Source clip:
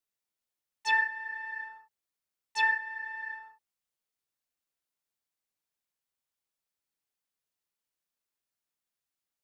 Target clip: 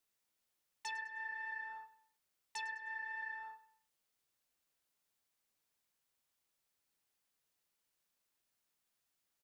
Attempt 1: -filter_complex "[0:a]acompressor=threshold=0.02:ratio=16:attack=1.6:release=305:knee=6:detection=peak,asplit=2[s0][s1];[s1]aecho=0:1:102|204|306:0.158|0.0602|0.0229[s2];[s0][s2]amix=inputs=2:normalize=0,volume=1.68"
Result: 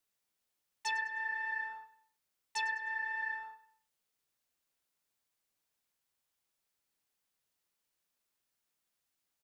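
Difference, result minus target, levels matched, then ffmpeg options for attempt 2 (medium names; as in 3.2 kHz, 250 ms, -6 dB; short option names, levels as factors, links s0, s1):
compression: peak gain reduction -8 dB
-filter_complex "[0:a]acompressor=threshold=0.0075:ratio=16:attack=1.6:release=305:knee=6:detection=peak,asplit=2[s0][s1];[s1]aecho=0:1:102|204|306:0.158|0.0602|0.0229[s2];[s0][s2]amix=inputs=2:normalize=0,volume=1.68"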